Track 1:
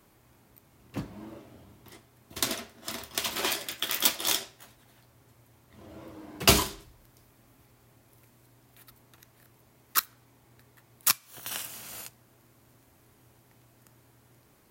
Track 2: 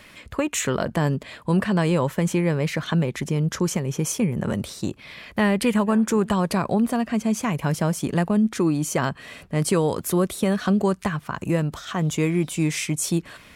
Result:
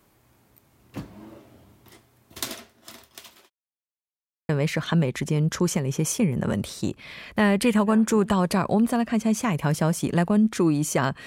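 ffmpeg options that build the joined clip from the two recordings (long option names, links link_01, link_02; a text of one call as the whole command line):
ffmpeg -i cue0.wav -i cue1.wav -filter_complex "[0:a]apad=whole_dur=11.26,atrim=end=11.26,asplit=2[link_01][link_02];[link_01]atrim=end=3.5,asetpts=PTS-STARTPTS,afade=type=out:start_time=2.13:duration=1.37[link_03];[link_02]atrim=start=3.5:end=4.49,asetpts=PTS-STARTPTS,volume=0[link_04];[1:a]atrim=start=2.49:end=9.26,asetpts=PTS-STARTPTS,afade=type=in:duration=0.004:curve=hsin[link_05];[link_03][link_04][link_05]concat=n=3:v=0:a=1" out.wav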